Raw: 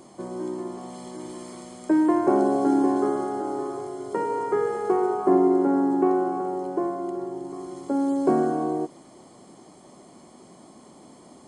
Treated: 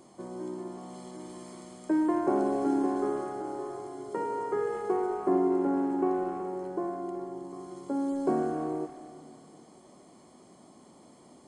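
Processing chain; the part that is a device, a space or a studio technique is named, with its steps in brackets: saturated reverb return (on a send at -9.5 dB: reverb RT60 2.9 s, pre-delay 28 ms + soft clip -23.5 dBFS, distortion -9 dB); on the sum: gain -6.5 dB

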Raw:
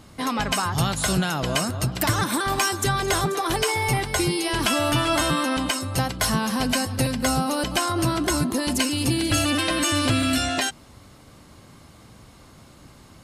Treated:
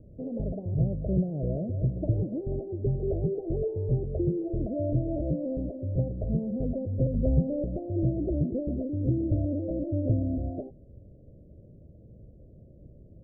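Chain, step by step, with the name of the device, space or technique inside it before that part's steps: low shelf boost with a cut just above (low shelf 66 Hz +6.5 dB; bell 260 Hz -5.5 dB 0.6 oct); 7.14–7.62 low shelf 160 Hz +8.5 dB; steep low-pass 610 Hz 72 dB/oct; gain -2 dB

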